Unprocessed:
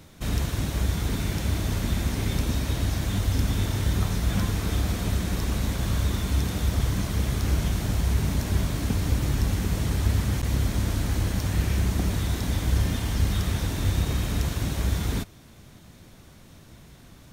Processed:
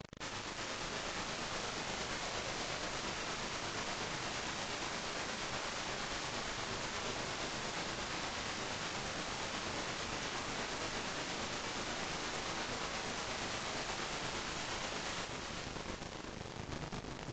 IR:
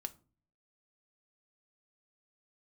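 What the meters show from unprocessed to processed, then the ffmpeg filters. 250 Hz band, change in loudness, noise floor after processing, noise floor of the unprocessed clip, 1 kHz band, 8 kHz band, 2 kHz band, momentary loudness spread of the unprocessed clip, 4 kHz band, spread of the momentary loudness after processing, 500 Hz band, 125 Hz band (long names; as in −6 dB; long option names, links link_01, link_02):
−16.5 dB, −13.0 dB, −46 dBFS, −50 dBFS, −2.5 dB, −7.0 dB, −3.0 dB, 2 LU, −4.0 dB, 4 LU, −7.0 dB, −25.5 dB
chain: -filter_complex "[0:a]highpass=frequency=100:poles=1,acompressor=threshold=-31dB:ratio=16,highshelf=frequency=3700:gain=-11.5,alimiter=level_in=7dB:limit=-24dB:level=0:latency=1:release=36,volume=-7dB,bass=frequency=250:gain=13,treble=frequency=4000:gain=-2,aeval=exprs='(mod(53.1*val(0)+1,2)-1)/53.1':channel_layout=same,flanger=delay=5:depth=4.2:regen=-24:speed=1:shape=sinusoidal,tremolo=f=8.5:d=0.46,acrusher=bits=6:mix=0:aa=0.000001,asplit=2[link_01][link_02];[link_02]adelay=39,volume=-2.5dB[link_03];[link_01][link_03]amix=inputs=2:normalize=0,aecho=1:1:390|741|1057|1341|1597:0.631|0.398|0.251|0.158|0.1,volume=-1dB" -ar 16000 -c:a libvorbis -b:a 48k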